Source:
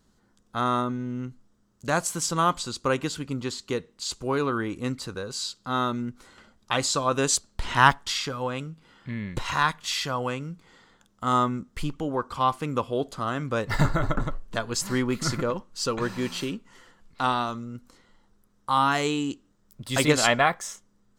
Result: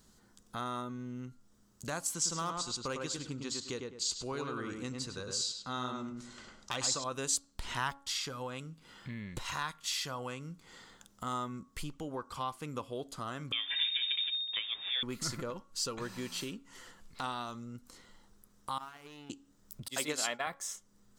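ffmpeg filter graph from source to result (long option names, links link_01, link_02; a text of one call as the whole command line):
ffmpeg -i in.wav -filter_complex "[0:a]asettb=1/sr,asplit=3[link_01][link_02][link_03];[link_01]atrim=end=2.144[link_04];[link_02]atrim=start=2.14:end=7.04,asetpts=PTS-STARTPTS,afade=type=in:duration=0.004:curve=qsin,afade=type=out:start_time=4.896:duration=0.004:curve=qsin,lowpass=frequency=6800:width_type=q:width=1.6,asoftclip=type=hard:threshold=-13.5dB,asplit=2[link_05][link_06];[link_06]adelay=103,lowpass=frequency=2200:poles=1,volume=-3.5dB,asplit=2[link_07][link_08];[link_08]adelay=103,lowpass=frequency=2200:poles=1,volume=0.25,asplit=2[link_09][link_10];[link_10]adelay=103,lowpass=frequency=2200:poles=1,volume=0.25,asplit=2[link_11][link_12];[link_12]adelay=103,lowpass=frequency=2200:poles=1,volume=0.25[link_13];[link_05][link_07][link_09][link_11][link_13]amix=inputs=5:normalize=0,atrim=end_sample=216090[link_14];[link_03]atrim=start=7.036[link_15];[link_04][link_14]acrossfade=duration=0.004:curve1=hsin:curve2=qsin[link_16];[link_16][link_15]acrossfade=duration=0.004:curve1=qsin:curve2=hsin,asettb=1/sr,asplit=3[link_17][link_18][link_19];[link_17]atrim=end=13.524[link_20];[link_18]atrim=start=13.52:end=15.03,asetpts=PTS-STARTPTS,afade=type=in:duration=0.004:curve=qsin,afade=type=out:start_time=1.506:duration=0.004:curve=qsin,aeval=exprs='val(0)+0.5*0.02*sgn(val(0))':channel_layout=same,lowpass=frequency=3100:width_type=q:width=0.5098,lowpass=frequency=3100:width_type=q:width=0.6013,lowpass=frequency=3100:width_type=q:width=0.9,lowpass=frequency=3100:width_type=q:width=2.563,afreqshift=-3700[link_21];[link_19]atrim=start=15.026[link_22];[link_20][link_21]acrossfade=duration=0.004:curve1=hsin:curve2=qsin[link_23];[link_23][link_22]acrossfade=duration=0.004:curve1=qsin:curve2=hsin,asettb=1/sr,asplit=3[link_24][link_25][link_26];[link_24]atrim=end=18.784[link_27];[link_25]atrim=start=18.78:end=19.3,asetpts=PTS-STARTPTS,afade=type=in:duration=0.004:curve=qsin,afade=type=out:start_time=0.516:duration=0.004:curve=qsin,lowpass=frequency=3200:width=0.5412,lowpass=frequency=3200:width=1.3066,agate=range=-16dB:threshold=-20dB:ratio=16:release=100:detection=peak,aeval=exprs='sgn(val(0))*max(abs(val(0))-0.00473,0)':channel_layout=same[link_28];[link_26]atrim=start=19.296[link_29];[link_27][link_28]acrossfade=duration=0.004:curve1=hsin:curve2=qsin[link_30];[link_30][link_29]acrossfade=duration=0.004:curve1=qsin:curve2=hsin,asettb=1/sr,asplit=3[link_31][link_32][link_33];[link_31]atrim=end=19.884[link_34];[link_32]atrim=start=19.88:end=20.47,asetpts=PTS-STARTPTS,afade=type=in:duration=0.004:curve=qsin,afade=type=out:start_time=0.586:duration=0.004:curve=qsin,highpass=240,agate=range=-33dB:threshold=-25dB:ratio=3:release=100:detection=peak[link_35];[link_33]atrim=start=20.466[link_36];[link_34][link_35]acrossfade=duration=0.004:curve1=hsin:curve2=qsin[link_37];[link_37][link_36]acrossfade=duration=0.004:curve1=qsin:curve2=hsin,acompressor=threshold=-47dB:ratio=2,highshelf=frequency=4200:gain=9.5,bandreject=frequency=277.9:width_type=h:width=4,bandreject=frequency=555.8:width_type=h:width=4,bandreject=frequency=833.7:width_type=h:width=4,bandreject=frequency=1111.6:width_type=h:width=4,bandreject=frequency=1389.5:width_type=h:width=4" out.wav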